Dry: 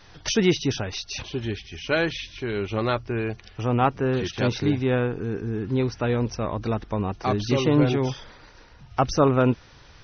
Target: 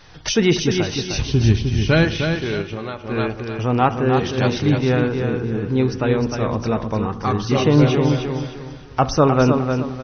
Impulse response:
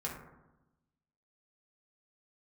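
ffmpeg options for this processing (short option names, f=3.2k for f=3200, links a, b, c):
-filter_complex "[0:a]asettb=1/sr,asplit=3[a][b][c];[a]atrim=end=1.134[d];[b]atrim=start=1.13:end=2.05,asetpts=PTS-STARTPTS,afade=t=in:d=0.004:c=qsin,afade=t=out:st=0.916:d=0.004:c=qsin,bass=f=250:g=14,treble=f=4k:g=5[e];[c]atrim=start=2.046[f];[d][e]acrossfade=d=0.004:c1=hsin:c2=qsin[g];[g][f]acrossfade=d=0.004:c1=qsin:c2=hsin,aecho=1:1:306|612|918|1224:0.501|0.16|0.0513|0.0164,asplit=2[h][i];[1:a]atrim=start_sample=2205[j];[i][j]afir=irnorm=-1:irlink=0,volume=-12dB[k];[h][k]amix=inputs=2:normalize=0,asplit=3[l][m][n];[l]afade=t=out:st=2.61:d=0.02[o];[m]acompressor=threshold=-27dB:ratio=12,afade=t=in:st=2.61:d=0.02,afade=t=out:st=3.1:d=0.02[p];[n]afade=t=in:st=3.1:d=0.02[q];[o][p][q]amix=inputs=3:normalize=0,asettb=1/sr,asplit=3[r][s][t];[r]atrim=end=7.014[u];[s]atrim=start=7.01:end=7.55,asetpts=PTS-STARTPTS,afade=t=in:d=0.004:c=qsin,afade=t=out:st=0.536:d=0.004:c=qsin,equalizer=f=630:t=o:w=0.33:g=-11,equalizer=f=1.25k:t=o:w=0.33:g=4,equalizer=f=2.5k:t=o:w=0.33:g=-5,equalizer=f=4k:t=o:w=0.33:g=-5[v];[t]atrim=start=7.546[w];[u][v]acrossfade=d=0.004:c1=hsin:c2=qsin[x];[x][w]acrossfade=d=0.004:c1=qsin:c2=hsin,volume=2.5dB"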